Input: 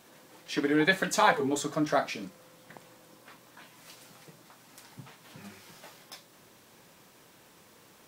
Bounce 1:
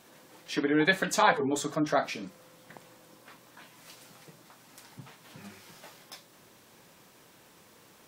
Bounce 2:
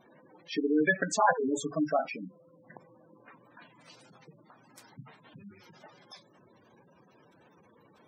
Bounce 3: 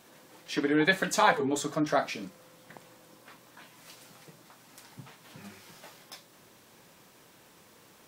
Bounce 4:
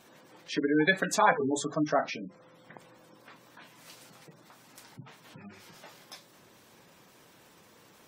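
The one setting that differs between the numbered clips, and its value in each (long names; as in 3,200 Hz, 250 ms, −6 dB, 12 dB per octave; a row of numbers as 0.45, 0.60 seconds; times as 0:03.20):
gate on every frequency bin, under each frame's peak: −40, −10, −50, −20 decibels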